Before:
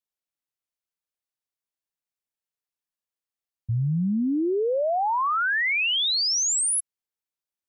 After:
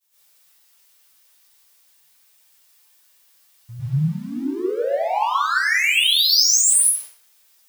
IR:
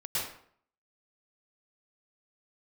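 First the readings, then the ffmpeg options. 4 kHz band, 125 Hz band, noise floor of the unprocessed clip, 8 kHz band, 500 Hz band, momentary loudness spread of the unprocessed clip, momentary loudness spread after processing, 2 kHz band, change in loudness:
+7.0 dB, +2.5 dB, below −85 dBFS, +8.0 dB, +1.5 dB, 5 LU, 13 LU, +5.0 dB, +6.0 dB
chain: -filter_complex "[0:a]aeval=exprs='val(0)+0.5*0.00562*sgn(val(0))':channel_layout=same,asplit=2[link_01][link_02];[link_02]highpass=frequency=720:poles=1,volume=9dB,asoftclip=type=tanh:threshold=-20dB[link_03];[link_01][link_03]amix=inputs=2:normalize=0,lowpass=frequency=4800:poles=1,volume=-6dB,agate=range=-33dB:threshold=-42dB:ratio=3:detection=peak,aemphasis=mode=production:type=75kf[link_04];[1:a]atrim=start_sample=2205[link_05];[link_04][link_05]afir=irnorm=-1:irlink=0,flanger=delay=6.6:depth=3:regen=54:speed=0.48:shape=triangular"

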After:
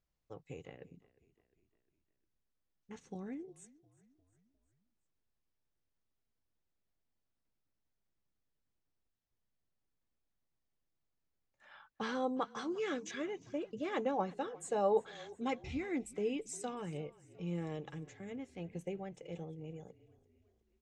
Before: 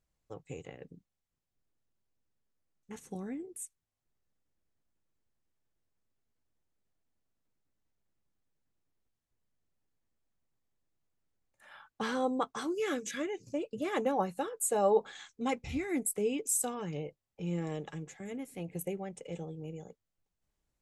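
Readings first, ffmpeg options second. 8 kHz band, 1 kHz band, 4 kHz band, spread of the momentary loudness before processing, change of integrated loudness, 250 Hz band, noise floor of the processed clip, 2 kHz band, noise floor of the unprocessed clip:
−14.5 dB, −4.0 dB, −4.0 dB, 16 LU, −5.0 dB, −4.0 dB, −84 dBFS, −4.0 dB, below −85 dBFS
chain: -filter_complex "[0:a]lowpass=frequency=6200:width=0.5412,lowpass=frequency=6200:width=1.3066,asplit=2[link_01][link_02];[link_02]asplit=4[link_03][link_04][link_05][link_06];[link_03]adelay=354,afreqshift=-33,volume=-21dB[link_07];[link_04]adelay=708,afreqshift=-66,volume=-26.5dB[link_08];[link_05]adelay=1062,afreqshift=-99,volume=-32dB[link_09];[link_06]adelay=1416,afreqshift=-132,volume=-37.5dB[link_10];[link_07][link_08][link_09][link_10]amix=inputs=4:normalize=0[link_11];[link_01][link_11]amix=inputs=2:normalize=0,volume=-4dB"

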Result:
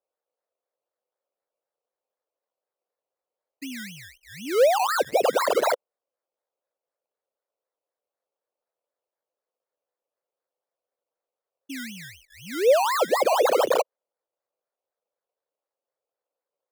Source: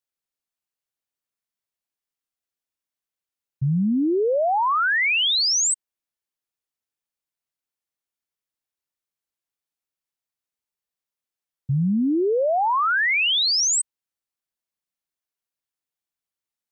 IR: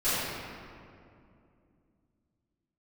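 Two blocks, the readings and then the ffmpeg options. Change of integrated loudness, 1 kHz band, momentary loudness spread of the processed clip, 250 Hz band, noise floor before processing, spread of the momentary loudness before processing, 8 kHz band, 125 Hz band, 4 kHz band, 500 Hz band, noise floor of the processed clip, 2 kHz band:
−2.0 dB, −1.5 dB, 18 LU, −12.5 dB, below −85 dBFS, 7 LU, −13.5 dB, below −20 dB, −13.0 dB, +3.5 dB, below −85 dBFS, −9.5 dB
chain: -af "afreqshift=-410,acrusher=samples=20:mix=1:aa=0.000001:lfo=1:lforange=12:lforate=4,highpass=frequency=520:width_type=q:width=4.3,volume=-5.5dB"

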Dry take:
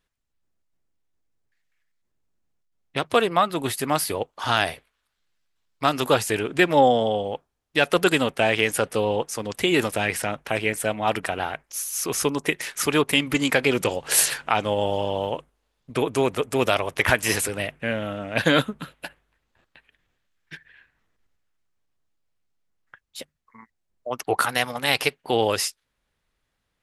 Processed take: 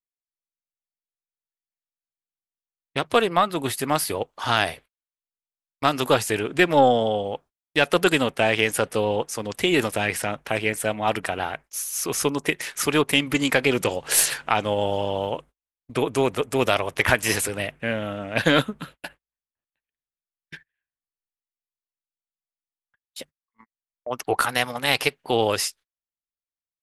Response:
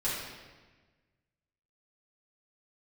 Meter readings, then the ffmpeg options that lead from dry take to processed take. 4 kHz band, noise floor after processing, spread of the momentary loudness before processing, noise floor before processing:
+0.5 dB, below −85 dBFS, 11 LU, −77 dBFS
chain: -af "agate=range=-32dB:threshold=-44dB:ratio=16:detection=peak,aeval=exprs='0.708*(cos(1*acos(clip(val(0)/0.708,-1,1)))-cos(1*PI/2))+0.0631*(cos(2*acos(clip(val(0)/0.708,-1,1)))-cos(2*PI/2))':channel_layout=same"

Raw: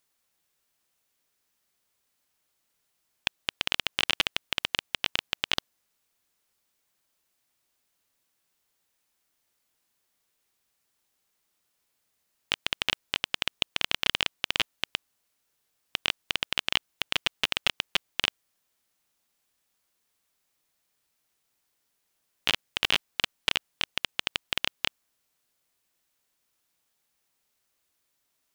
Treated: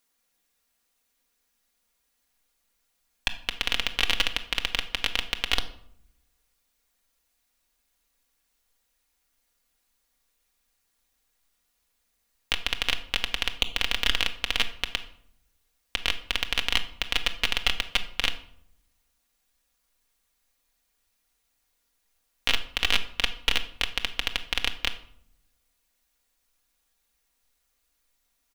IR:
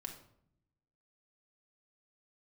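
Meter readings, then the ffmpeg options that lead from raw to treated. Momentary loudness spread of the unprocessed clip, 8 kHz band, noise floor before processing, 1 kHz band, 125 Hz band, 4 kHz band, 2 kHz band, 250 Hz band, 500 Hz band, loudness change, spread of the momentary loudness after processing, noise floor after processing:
5 LU, +2.0 dB, −77 dBFS, +1.5 dB, +4.5 dB, +1.5 dB, +2.0 dB, +1.5 dB, +1.0 dB, +2.0 dB, 7 LU, −74 dBFS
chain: -filter_complex "[0:a]aecho=1:1:4.2:0.52,acrusher=bits=7:mode=log:mix=0:aa=0.000001,asubboost=boost=6:cutoff=63,asplit=2[link_01][link_02];[1:a]atrim=start_sample=2205[link_03];[link_02][link_03]afir=irnorm=-1:irlink=0,volume=4dB[link_04];[link_01][link_04]amix=inputs=2:normalize=0,volume=-5dB"

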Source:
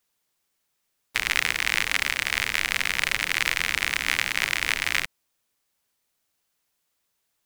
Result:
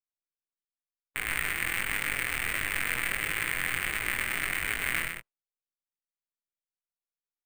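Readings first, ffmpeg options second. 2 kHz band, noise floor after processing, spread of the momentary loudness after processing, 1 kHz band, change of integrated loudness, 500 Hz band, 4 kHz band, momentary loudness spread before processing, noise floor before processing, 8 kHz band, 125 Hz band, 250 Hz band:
−5.0 dB, below −85 dBFS, 3 LU, −4.5 dB, −5.5 dB, −2.5 dB, −10.5 dB, 3 LU, −76 dBFS, −4.5 dB, 0.0 dB, −0.5 dB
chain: -filter_complex "[0:a]aeval=exprs='if(lt(val(0),0),0.708*val(0),val(0))':channel_layout=same,lowpass=2300,bandreject=frequency=930:width=21,agate=range=-33dB:threshold=-35dB:ratio=3:detection=peak,equalizer=frequency=210:width=3.1:gain=-4,alimiter=limit=-20dB:level=0:latency=1:release=452,flanger=delay=19:depth=4.9:speed=1.5,acrusher=samples=4:mix=1:aa=0.000001,asplit=2[link_01][link_02];[link_02]adelay=17,volume=-12.5dB[link_03];[link_01][link_03]amix=inputs=2:normalize=0,asplit=2[link_04][link_05];[link_05]aecho=0:1:125:0.531[link_06];[link_04][link_06]amix=inputs=2:normalize=0,volume=9dB"

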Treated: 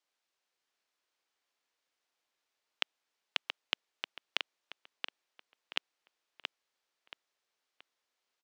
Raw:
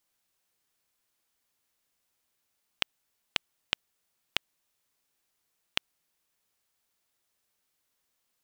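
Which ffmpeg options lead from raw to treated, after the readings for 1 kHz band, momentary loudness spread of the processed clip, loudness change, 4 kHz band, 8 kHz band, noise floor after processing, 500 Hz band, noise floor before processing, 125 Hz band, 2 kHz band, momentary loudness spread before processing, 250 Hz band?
−1.5 dB, 18 LU, −4.0 dB, −2.0 dB, −7.5 dB, below −85 dBFS, −2.0 dB, −79 dBFS, below −15 dB, −1.5 dB, 0 LU, −7.0 dB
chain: -filter_complex "[0:a]acrossover=split=290 6500:gain=0.126 1 0.141[link_01][link_02][link_03];[link_01][link_02][link_03]amix=inputs=3:normalize=0,asplit=2[link_04][link_05];[link_05]adelay=677,lowpass=frequency=3900:poles=1,volume=-5dB,asplit=2[link_06][link_07];[link_07]adelay=677,lowpass=frequency=3900:poles=1,volume=0.36,asplit=2[link_08][link_09];[link_09]adelay=677,lowpass=frequency=3900:poles=1,volume=0.36,asplit=2[link_10][link_11];[link_11]adelay=677,lowpass=frequency=3900:poles=1,volume=0.36[link_12];[link_04][link_06][link_08][link_10][link_12]amix=inputs=5:normalize=0,volume=-2.5dB"

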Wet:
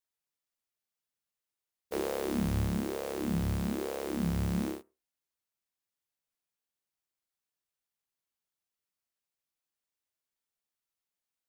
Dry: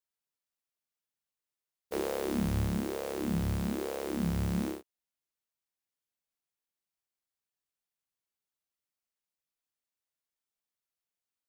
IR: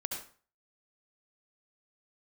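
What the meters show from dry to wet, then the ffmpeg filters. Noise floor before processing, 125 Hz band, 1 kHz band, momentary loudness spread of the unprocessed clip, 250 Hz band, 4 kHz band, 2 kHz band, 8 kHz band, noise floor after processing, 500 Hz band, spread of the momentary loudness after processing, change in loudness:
below −85 dBFS, 0.0 dB, 0.0 dB, 5 LU, 0.0 dB, 0.0 dB, 0.0 dB, 0.0 dB, below −85 dBFS, 0.0 dB, 5 LU, 0.0 dB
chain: -filter_complex "[0:a]asplit=2[link_01][link_02];[link_02]asuperstop=centerf=4100:order=4:qfactor=0.6[link_03];[1:a]atrim=start_sample=2205,asetrate=79380,aresample=44100,adelay=41[link_04];[link_03][link_04]afir=irnorm=-1:irlink=0,volume=-21.5dB[link_05];[link_01][link_05]amix=inputs=2:normalize=0"

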